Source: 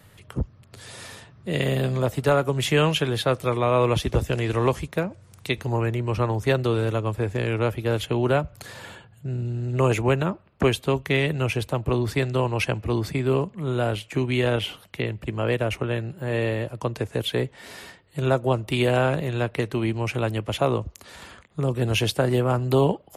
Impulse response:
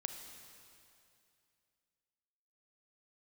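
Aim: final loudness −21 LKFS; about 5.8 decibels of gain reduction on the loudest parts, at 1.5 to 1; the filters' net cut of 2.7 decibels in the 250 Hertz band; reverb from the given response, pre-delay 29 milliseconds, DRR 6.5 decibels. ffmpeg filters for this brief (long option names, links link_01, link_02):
-filter_complex "[0:a]equalizer=frequency=250:width_type=o:gain=-4,acompressor=threshold=-32dB:ratio=1.5,asplit=2[link_01][link_02];[1:a]atrim=start_sample=2205,adelay=29[link_03];[link_02][link_03]afir=irnorm=-1:irlink=0,volume=-5.5dB[link_04];[link_01][link_04]amix=inputs=2:normalize=0,volume=8.5dB"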